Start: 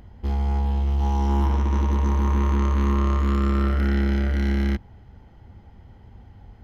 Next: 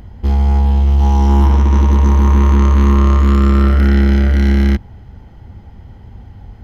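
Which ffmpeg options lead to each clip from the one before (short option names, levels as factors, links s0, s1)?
-af "bass=f=250:g=3,treble=f=4000:g=2,volume=2.51"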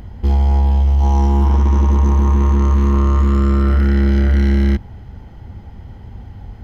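-af "alimiter=limit=0.473:level=0:latency=1:release=35,asoftclip=type=tanh:threshold=0.398,volume=1.19"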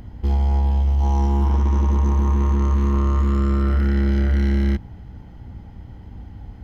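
-af "aeval=exprs='val(0)+0.0158*(sin(2*PI*60*n/s)+sin(2*PI*2*60*n/s)/2+sin(2*PI*3*60*n/s)/3+sin(2*PI*4*60*n/s)/4+sin(2*PI*5*60*n/s)/5)':c=same,volume=0.562"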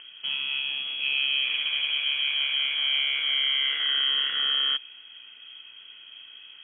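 -af "highpass=190,equalizer=f=1300:w=0.56:g=2.5,lowpass=f=2900:t=q:w=0.5098,lowpass=f=2900:t=q:w=0.6013,lowpass=f=2900:t=q:w=0.9,lowpass=f=2900:t=q:w=2.563,afreqshift=-3400"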